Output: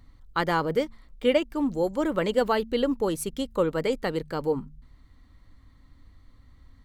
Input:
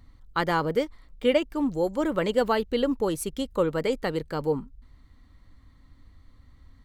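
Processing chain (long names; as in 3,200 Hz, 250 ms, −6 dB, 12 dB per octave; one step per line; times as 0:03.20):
hum removal 75.27 Hz, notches 3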